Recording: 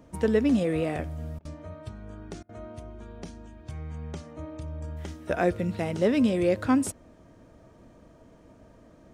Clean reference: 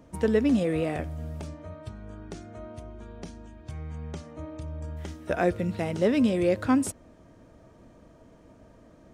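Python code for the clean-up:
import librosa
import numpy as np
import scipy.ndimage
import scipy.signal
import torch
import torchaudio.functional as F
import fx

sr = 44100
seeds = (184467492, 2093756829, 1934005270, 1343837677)

y = fx.fix_interpolate(x, sr, at_s=(1.39, 2.43), length_ms=59.0)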